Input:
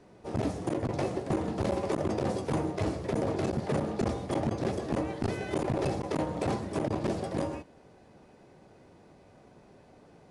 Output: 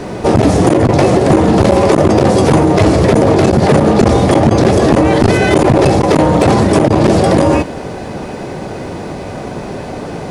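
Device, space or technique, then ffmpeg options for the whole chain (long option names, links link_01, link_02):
loud club master: -af "acompressor=threshold=-32dB:ratio=2,asoftclip=type=hard:threshold=-25.5dB,alimiter=level_in=33.5dB:limit=-1dB:release=50:level=0:latency=1,volume=-1dB"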